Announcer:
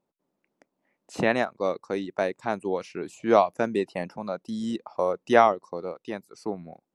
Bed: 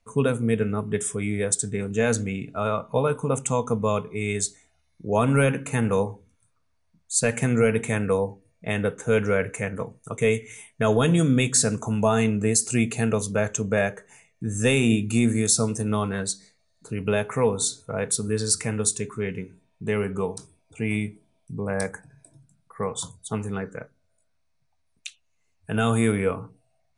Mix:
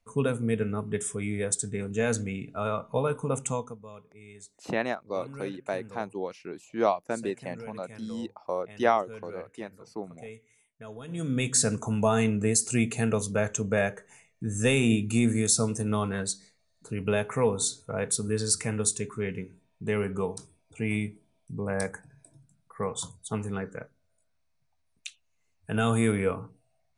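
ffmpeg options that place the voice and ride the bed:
-filter_complex "[0:a]adelay=3500,volume=-5.5dB[a];[1:a]volume=15dB,afade=t=out:st=3.48:d=0.28:silence=0.125893,afade=t=in:st=11.07:d=0.53:silence=0.105925[b];[a][b]amix=inputs=2:normalize=0"

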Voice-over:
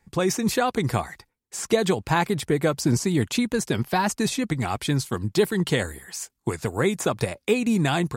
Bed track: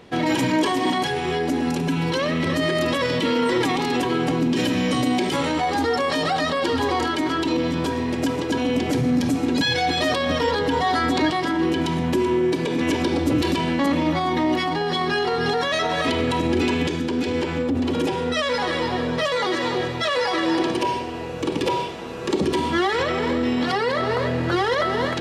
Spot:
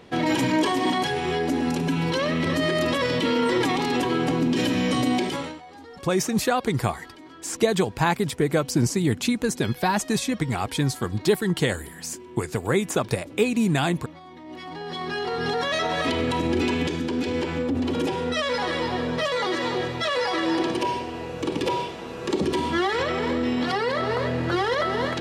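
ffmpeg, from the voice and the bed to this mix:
-filter_complex "[0:a]adelay=5900,volume=0dB[a];[1:a]volume=18.5dB,afade=t=out:st=5.16:d=0.44:silence=0.0891251,afade=t=in:st=14.44:d=1.25:silence=0.1[b];[a][b]amix=inputs=2:normalize=0"

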